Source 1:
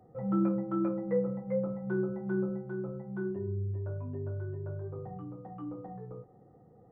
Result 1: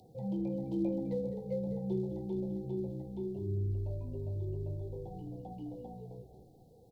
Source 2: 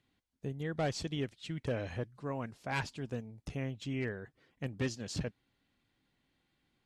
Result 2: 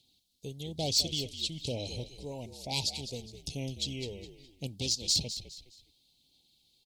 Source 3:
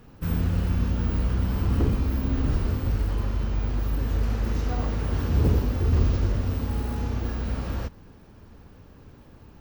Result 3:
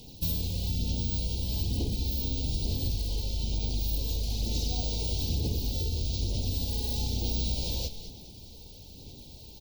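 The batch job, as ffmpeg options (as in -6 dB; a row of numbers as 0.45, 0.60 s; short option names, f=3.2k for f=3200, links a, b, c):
-filter_complex "[0:a]equalizer=f=13k:t=o:w=1.1:g=4,acompressor=threshold=-27dB:ratio=6,aphaser=in_gain=1:out_gain=1:delay=2.2:decay=0.29:speed=1.1:type=sinusoidal,acontrast=27,highshelf=f=2.8k:t=q:w=3:g=13,volume=11.5dB,asoftclip=hard,volume=-11.5dB,asuperstop=centerf=1400:order=12:qfactor=1.2,asplit=4[a][b][c][d];[b]adelay=207,afreqshift=-59,volume=-11.5dB[e];[c]adelay=414,afreqshift=-118,volume=-21.1dB[f];[d]adelay=621,afreqshift=-177,volume=-30.8dB[g];[a][e][f][g]amix=inputs=4:normalize=0,volume=-7.5dB"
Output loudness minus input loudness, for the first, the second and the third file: -3.0, +5.5, -4.5 LU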